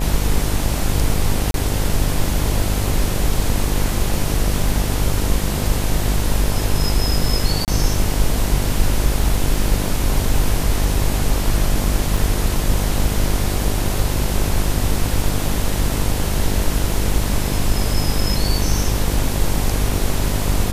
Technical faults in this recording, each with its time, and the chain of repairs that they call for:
buzz 50 Hz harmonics 21 -22 dBFS
1.51–1.54 s: dropout 32 ms
7.65–7.68 s: dropout 28 ms
12.17 s: dropout 3 ms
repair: de-hum 50 Hz, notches 21; interpolate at 1.51 s, 32 ms; interpolate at 7.65 s, 28 ms; interpolate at 12.17 s, 3 ms

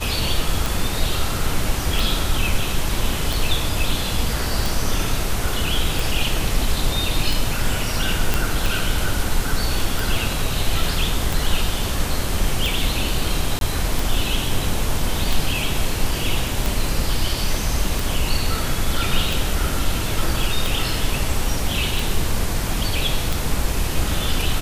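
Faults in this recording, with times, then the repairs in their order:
tick 45 rpm
8.34 s: pop
13.59–13.61 s: dropout 22 ms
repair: de-click; interpolate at 13.59 s, 22 ms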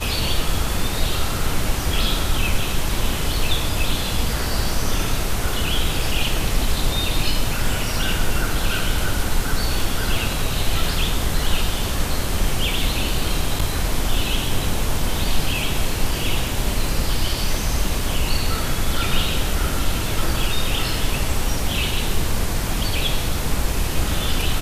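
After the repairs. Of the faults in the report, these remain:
nothing left

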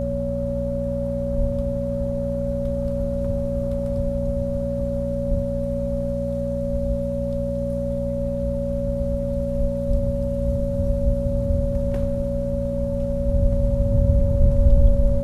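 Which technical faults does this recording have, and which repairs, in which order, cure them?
hum 60 Hz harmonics 4 -27 dBFS
whine 560 Hz -25 dBFS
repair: de-hum 60 Hz, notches 4; band-stop 560 Hz, Q 30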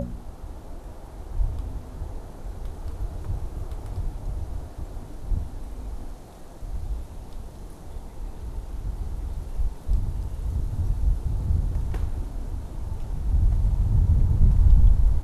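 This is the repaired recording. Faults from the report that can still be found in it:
nothing left

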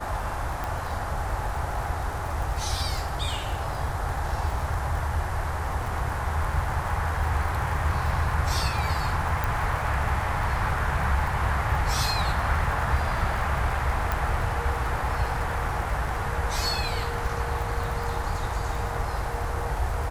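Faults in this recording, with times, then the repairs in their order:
crackle 46 per s -32 dBFS
0.64 s: pop
9.44 s: pop
14.12 s: pop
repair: de-click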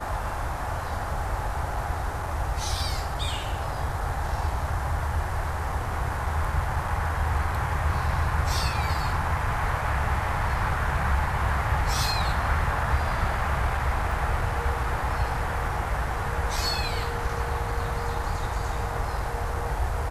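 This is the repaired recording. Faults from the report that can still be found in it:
14.12 s: pop

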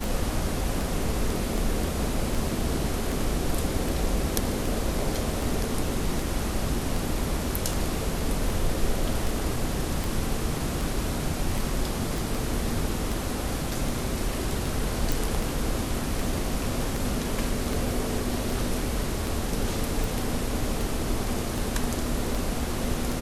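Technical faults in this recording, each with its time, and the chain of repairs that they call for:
tick 78 rpm
12.18 s: pop
15.12 s: pop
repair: de-click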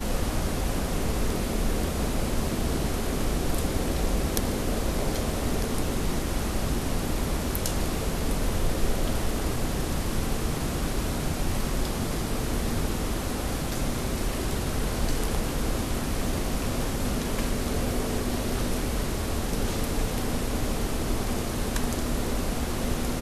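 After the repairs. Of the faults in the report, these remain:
nothing left

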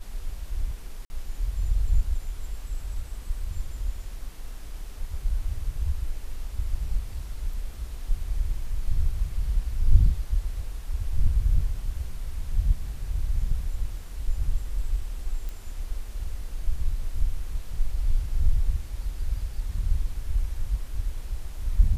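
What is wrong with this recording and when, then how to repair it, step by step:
1.05–1.10 s: dropout 50 ms
15.49 s: pop -23 dBFS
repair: de-click; interpolate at 1.05 s, 50 ms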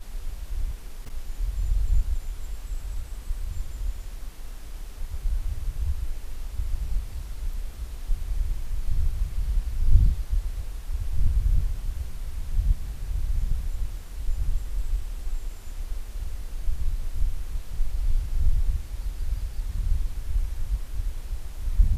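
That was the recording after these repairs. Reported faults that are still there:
nothing left

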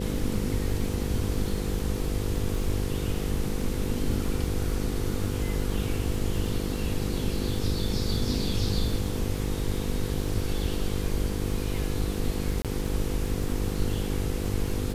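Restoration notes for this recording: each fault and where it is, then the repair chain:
buzz 50 Hz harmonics 10 -32 dBFS
crackle 40 per s -36 dBFS
12.62–12.65 s: dropout 27 ms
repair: de-click; de-hum 50 Hz, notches 10; interpolate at 12.62 s, 27 ms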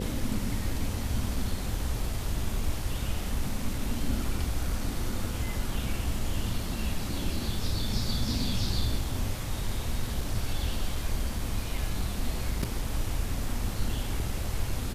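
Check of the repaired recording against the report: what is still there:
nothing left

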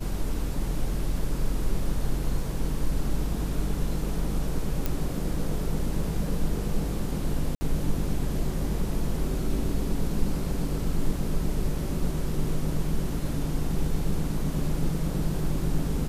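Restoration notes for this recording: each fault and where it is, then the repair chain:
4.86 s: pop
7.55–7.61 s: dropout 60 ms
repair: de-click; interpolate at 7.55 s, 60 ms

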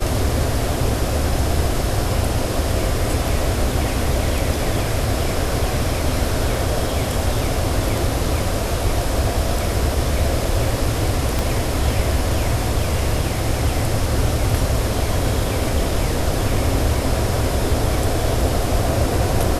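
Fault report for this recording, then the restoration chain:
11.39 s: pop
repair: de-click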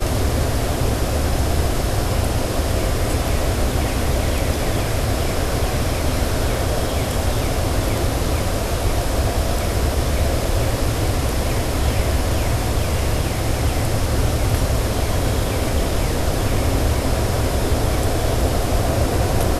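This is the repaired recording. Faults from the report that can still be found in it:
11.39 s: pop

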